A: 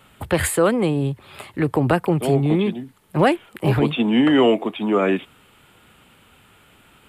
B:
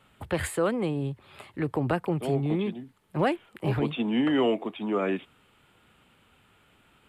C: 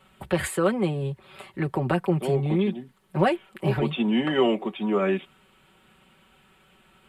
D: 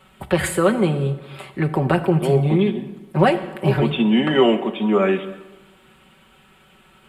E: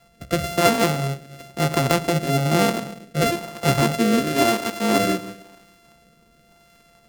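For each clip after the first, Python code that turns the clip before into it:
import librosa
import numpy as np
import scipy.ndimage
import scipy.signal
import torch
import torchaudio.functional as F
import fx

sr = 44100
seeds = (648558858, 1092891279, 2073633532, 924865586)

y1 = fx.high_shelf(x, sr, hz=8400.0, db=-8.0)
y1 = y1 * librosa.db_to_amplitude(-8.5)
y2 = y1 + 0.69 * np.pad(y1, (int(5.3 * sr / 1000.0), 0))[:len(y1)]
y2 = y2 * librosa.db_to_amplitude(1.5)
y3 = fx.rev_plate(y2, sr, seeds[0], rt60_s=1.2, hf_ratio=0.75, predelay_ms=0, drr_db=10.0)
y3 = y3 * librosa.db_to_amplitude(5.5)
y4 = np.r_[np.sort(y3[:len(y3) // 64 * 64].reshape(-1, 64), axis=1).ravel(), y3[len(y3) // 64 * 64:]]
y4 = fx.rotary(y4, sr, hz=1.0)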